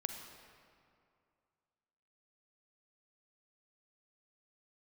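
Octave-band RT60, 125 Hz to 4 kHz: 2.5 s, 2.4 s, 2.4 s, 2.4 s, 1.9 s, 1.5 s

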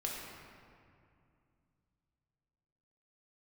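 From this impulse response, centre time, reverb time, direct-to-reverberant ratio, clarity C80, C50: 109 ms, 2.4 s, -3.5 dB, 1.5 dB, 0.0 dB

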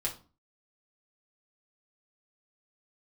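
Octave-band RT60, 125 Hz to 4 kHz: 0.50 s, 0.50 s, 0.35 s, 0.35 s, 0.25 s, 0.30 s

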